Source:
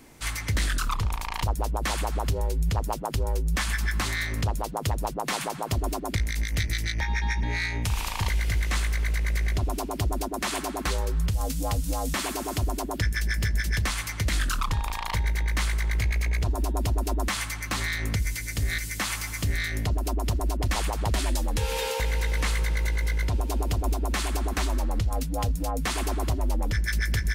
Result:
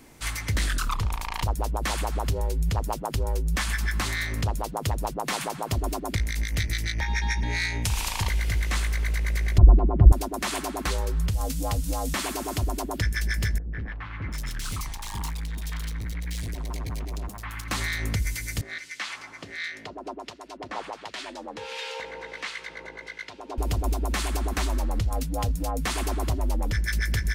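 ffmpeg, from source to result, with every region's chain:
-filter_complex "[0:a]asettb=1/sr,asplit=3[a][b][c];[a]atrim=end=7.064[d];[b]atrim=start=7.06:end=8.23,asetpts=PTS-STARTPTS,afade=t=in:d=0.004:c=qsin,afade=t=out:st=1.166:d=0.004:c=qsin,equalizer=f=7.7k:w=0.49:g=5.5,bandreject=f=1.2k:w=16[e];[c]atrim=start=8.226[f];[d][e]acrossfade=d=0.004:c1=hsin:c2=qsin[g];[g][f]acrossfade=d=0.004:c1=qsin:c2=hsin,asettb=1/sr,asplit=3[h][i][j];[h]atrim=end=9.584[k];[i]atrim=start=9.58:end=10.12,asetpts=PTS-STARTPTS,afade=t=in:d=0.004:c=qsin,afade=t=out:st=0.536:d=0.004:c=qsin,lowpass=1.3k,aemphasis=mode=reproduction:type=riaa,aecho=1:1:5.7:0.39,atrim=end_sample=23814[l];[j]atrim=start=10.116[m];[k][l]acrossfade=d=0.004:c1=hsin:c2=qsin[n];[n][m]acrossfade=d=0.004:c1=qsin:c2=hsin,asettb=1/sr,asplit=3[o][p][q];[o]atrim=end=13.584[r];[p]atrim=start=13.58:end=17.68,asetpts=PTS-STARTPTS,afade=t=in:d=0.004:c=qsin,afade=t=out:st=4.096:d=0.004:c=qsin,equalizer=f=490:w=1.6:g=-7,volume=29.5dB,asoftclip=hard,volume=-29.5dB,acrossover=split=680|2400[s][t][u];[t]adelay=150[v];[u]adelay=740[w];[s][v][w]amix=inputs=3:normalize=0,atrim=end_sample=180810[x];[q]atrim=start=17.676[y];[r][x]acrossfade=d=0.004:c1=hsin:c2=qsin[z];[z][y]acrossfade=d=0.004:c1=qsin:c2=hsin,asettb=1/sr,asplit=3[aa][ab][ac];[aa]atrim=end=18.614[ad];[ab]atrim=start=18.61:end=23.58,asetpts=PTS-STARTPTS,afade=t=in:d=0.004:c=qsin,afade=t=out:st=4.966:d=0.004:c=qsin,acrossover=split=1400[ae][af];[ae]aeval=exprs='val(0)*(1-0.7/2+0.7/2*cos(2*PI*1.4*n/s))':c=same[ag];[af]aeval=exprs='val(0)*(1-0.7/2-0.7/2*cos(2*PI*1.4*n/s))':c=same[ah];[ag][ah]amix=inputs=2:normalize=0,highpass=340,lowpass=4.4k[ai];[ac]atrim=start=23.576[aj];[ad][ai]acrossfade=d=0.004:c1=hsin:c2=qsin[ak];[ak][aj]acrossfade=d=0.004:c1=qsin:c2=hsin"

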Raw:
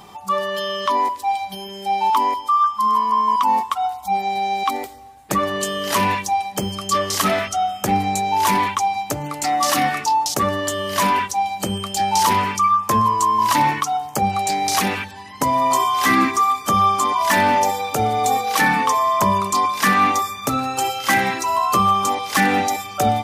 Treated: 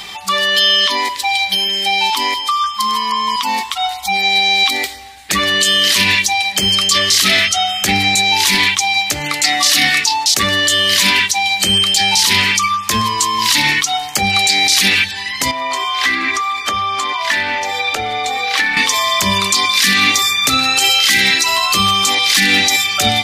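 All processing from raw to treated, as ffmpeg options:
-filter_complex "[0:a]asettb=1/sr,asplit=3[a][b][c];[a]atrim=end=15.514[d];[b]atrim=start=15.51:end=18.77,asetpts=PTS-STARTPTS,afade=t=in:d=0.004:c=qsin,afade=t=out:st=3.256:d=0.004:c=qsin,lowpass=f=1.7k:p=1,equalizer=f=160:t=o:w=0.76:g=-14.5,acompressor=threshold=-23dB:ratio=3:attack=3.2:release=140:knee=1:detection=peak[e];[c]atrim=start=18.766[f];[d][e]acrossfade=d=0.004:c1=hsin:c2=qsin[g];[g][f]acrossfade=d=0.004:c1=qsin:c2=hsin,equalizer=f=125:t=o:w=1:g=-9,equalizer=f=250:t=o:w=1:g=-5,equalizer=f=500:t=o:w=1:g=-5,equalizer=f=1k:t=o:w=1:g=-7,equalizer=f=2k:t=o:w=1:g=10,equalizer=f=4k:t=o:w=1:g=11,equalizer=f=8k:t=o:w=1:g=3,acrossover=split=400|3000[h][i][j];[i]acompressor=threshold=-26dB:ratio=6[k];[h][k][j]amix=inputs=3:normalize=0,alimiter=level_in=11dB:limit=-1dB:release=50:level=0:latency=1,volume=-1dB"

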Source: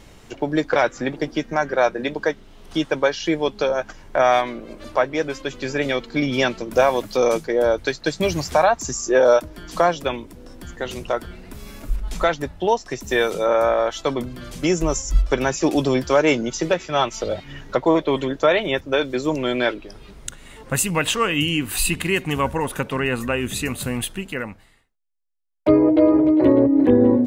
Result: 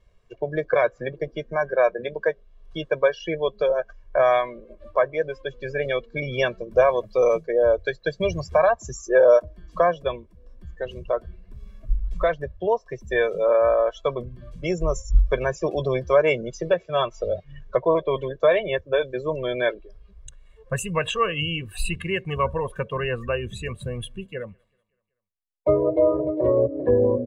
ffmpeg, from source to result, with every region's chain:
-filter_complex "[0:a]asettb=1/sr,asplit=3[a][b][c];[a]atrim=end=23.834[d];[b]atrim=start=23.83:end=26.11,asetpts=PTS-STARTPTS,afade=t=in:d=0.004:c=qsin,afade=t=out:st=2.276:d=0.004:c=qsin,equalizer=f=1.8k:w=1.2:g=-2.5,aecho=1:1:189|378|567|756:0.1|0.056|0.0314|0.0176,atrim=end_sample=100548[e];[c]atrim=start=26.106[f];[d][e]acrossfade=d=0.004:c1=hsin:c2=qsin[g];[g][f]acrossfade=d=0.004:c1=qsin:c2=hsin,afftdn=nr=17:nf=-27,lowpass=f=2.9k:p=1,aecho=1:1:1.8:0.82,volume=-4.5dB"

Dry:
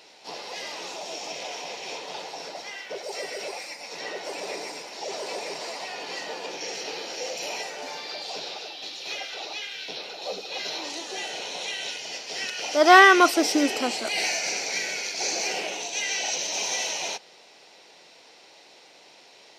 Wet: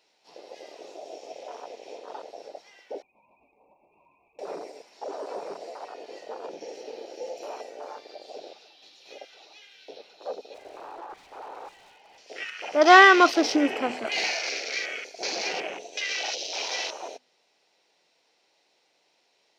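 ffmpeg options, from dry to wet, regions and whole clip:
-filter_complex "[0:a]asettb=1/sr,asplit=3[a][b][c];[a]atrim=end=3.024[d];[b]atrim=start=3.02:end=4.39,asetpts=PTS-STARTPTS,afade=t=in:d=0.004:c=qsin,afade=t=out:st=1.366:d=0.004:c=qsin,lowpass=f=2.5k:t=q:w=0.5098,lowpass=f=2.5k:t=q:w=0.6013,lowpass=f=2.5k:t=q:w=0.9,lowpass=f=2.5k:t=q:w=2.563,afreqshift=-2900,acompressor=threshold=-37dB:ratio=6:attack=3.2:release=140:knee=1:detection=peak,asuperstop=centerf=1700:order=8:qfactor=0.96[e];[c]atrim=start=4.386[f];[d][e]acrossfade=d=0.004:c1=hsin:c2=qsin[g];[g][f]acrossfade=d=0.004:c1=qsin:c2=hsin,asettb=1/sr,asplit=3[h][i][j];[h]atrim=end=10.544[k];[i]atrim=start=10.54:end=12.18,asetpts=PTS-STARTPTS,afade=t=in:d=0.004:c=qsin,afade=t=out:st=1.636:d=0.004:c=qsin,highpass=200,lowpass=2.3k,equalizer=f=850:t=o:w=0.42:g=13.5,aeval=exprs='0.0237*(abs(mod(val(0)/0.0237+3,4)-2)-1)':c=same[l];[j]atrim=start=12.176[m];[k][l]acrossfade=d=0.004:c1=hsin:c2=qsin[n];[n][m]acrossfade=d=0.004:c1=qsin:c2=hsin,afwtdn=0.0282,bandreject=f=50:t=h:w=6,bandreject=f=100:t=h:w=6,bandreject=f=150:t=h:w=6,bandreject=f=200:t=h:w=6,bandreject=f=250:t=h:w=6"

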